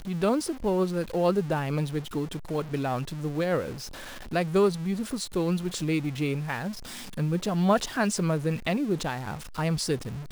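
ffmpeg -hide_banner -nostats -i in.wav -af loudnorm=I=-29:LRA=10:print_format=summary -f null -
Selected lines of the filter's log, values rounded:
Input Integrated:    -28.1 LUFS
Input True Peak:     -11.2 dBTP
Input LRA:             1.6 LU
Input Threshold:     -38.2 LUFS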